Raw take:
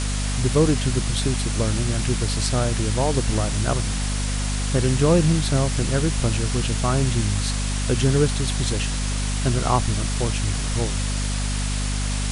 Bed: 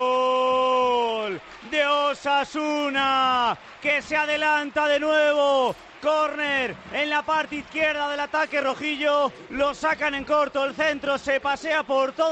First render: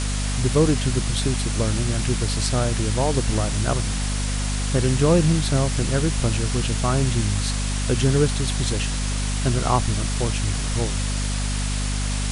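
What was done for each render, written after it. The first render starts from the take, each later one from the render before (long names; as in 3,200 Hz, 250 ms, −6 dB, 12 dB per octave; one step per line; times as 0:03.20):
no processing that can be heard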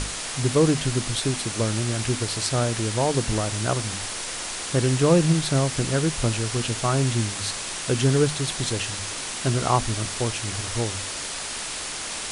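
mains-hum notches 50/100/150/200/250 Hz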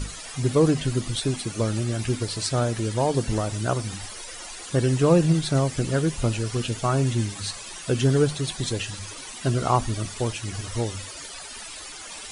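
broadband denoise 14 dB, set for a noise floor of −32 dBFS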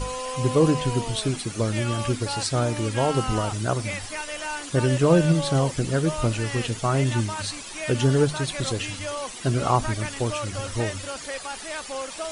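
mix in bed −11 dB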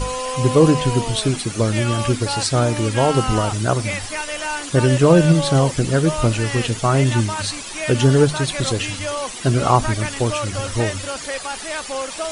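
level +6 dB
brickwall limiter −2 dBFS, peak gain reduction 1.5 dB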